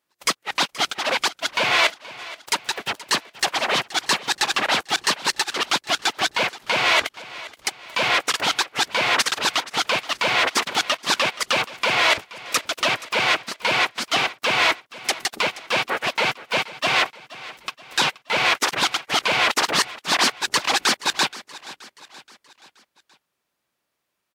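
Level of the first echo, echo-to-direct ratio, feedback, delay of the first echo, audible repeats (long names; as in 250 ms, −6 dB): −18.0 dB, −17.0 dB, 50%, 476 ms, 3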